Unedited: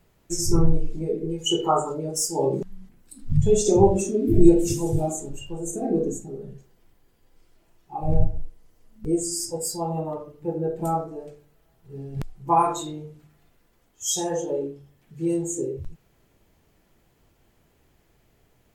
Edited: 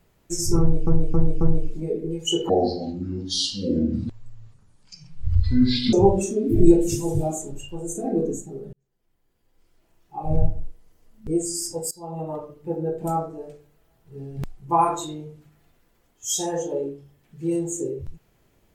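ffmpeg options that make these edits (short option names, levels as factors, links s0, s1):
-filter_complex "[0:a]asplit=8[s0][s1][s2][s3][s4][s5][s6][s7];[s0]atrim=end=0.872[s8];[s1]atrim=start=0.598:end=0.872[s9];[s2]atrim=start=0.598:end=0.872[s10];[s3]atrim=start=0.598:end=1.684[s11];[s4]atrim=start=1.68:end=3.71,asetpts=PTS-STARTPTS,asetrate=26019,aresample=44100[s12];[s5]atrim=start=3.706:end=6.51,asetpts=PTS-STARTPTS,afade=t=out:st=2.8:d=0.004:c=hsin[s13];[s6]atrim=start=6.51:end=9.69,asetpts=PTS-STARTPTS,afade=t=in:d=1.49,afade=t=out:st=3.176:d=0.004:c=hsin:silence=0.0841395[s14];[s7]atrim=start=9.69,asetpts=PTS-STARTPTS,afade=t=in:d=0.43:silence=0.0841395[s15];[s8][s9]acrossfade=d=0.004:c1=hsin:c2=hsin[s16];[s16][s10]acrossfade=d=0.004:c1=hsin:c2=hsin[s17];[s17][s11]acrossfade=d=0.004:c1=hsin:c2=hsin[s18];[s18][s12]acrossfade=d=0.004:c1=hsin:c2=hsin[s19];[s13][s14][s15]concat=n=3:v=0:a=1[s20];[s19][s20]acrossfade=d=0.004:c1=hsin:c2=hsin"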